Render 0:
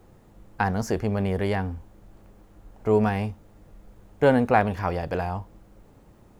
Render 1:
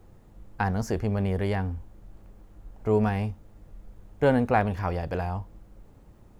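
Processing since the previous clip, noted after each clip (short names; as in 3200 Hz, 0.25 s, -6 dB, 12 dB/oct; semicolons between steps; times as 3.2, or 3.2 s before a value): low shelf 99 Hz +8.5 dB; gain -3.5 dB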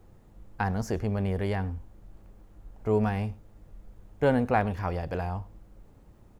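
echo 0.102 s -23.5 dB; gain -2 dB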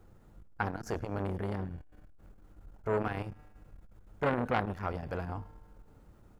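bell 1400 Hz +7.5 dB 0.26 oct; resonator 150 Hz, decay 1.9 s, mix 50%; core saturation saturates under 1200 Hz; gain +3.5 dB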